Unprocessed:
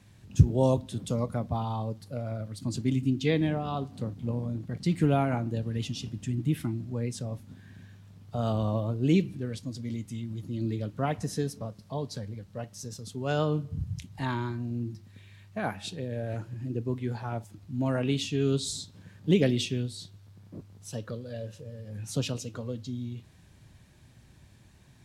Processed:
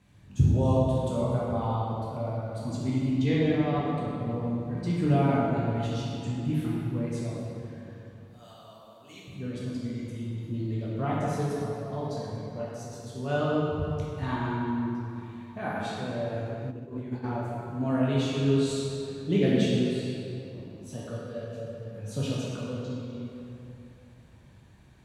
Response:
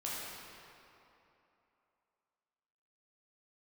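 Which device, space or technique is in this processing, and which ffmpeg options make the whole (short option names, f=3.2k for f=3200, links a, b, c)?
swimming-pool hall: -filter_complex "[0:a]asettb=1/sr,asplit=3[a][b][c];[a]atrim=end=8.254[d];[b]atrim=start=8.25:end=9.28,asetpts=PTS-STARTPTS,afade=t=in:d=0.004:c=qsin,afade=t=out:st=1.026:d=0.004:c=qsin,aderivative[e];[c]atrim=start=9.276[f];[d][e]acrossfade=d=0.004:c1=hsin:c2=qsin[g];[g][f]acrossfade=d=0.004:c1=qsin:c2=hsin[h];[1:a]atrim=start_sample=2205[i];[h][i]afir=irnorm=-1:irlink=0,highshelf=f=3.6k:g=-6.5,bandreject=f=5.2k:w=13,asplit=3[j][k][l];[j]afade=t=out:st=16.7:d=0.02[m];[k]agate=range=-33dB:threshold=-25dB:ratio=3:detection=peak,afade=t=in:st=16.7:d=0.02,afade=t=out:st=17.23:d=0.02[n];[l]afade=t=in:st=17.23:d=0.02[o];[m][n][o]amix=inputs=3:normalize=0"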